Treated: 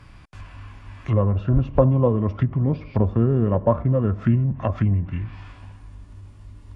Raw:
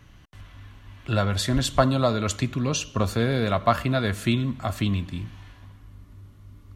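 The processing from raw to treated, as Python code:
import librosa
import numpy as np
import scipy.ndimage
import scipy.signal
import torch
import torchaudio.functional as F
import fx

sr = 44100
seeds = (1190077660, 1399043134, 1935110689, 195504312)

y = fx.env_lowpass_down(x, sr, base_hz=790.0, full_db=-22.0)
y = fx.formant_shift(y, sr, semitones=-4)
y = y * 10.0 ** (5.0 / 20.0)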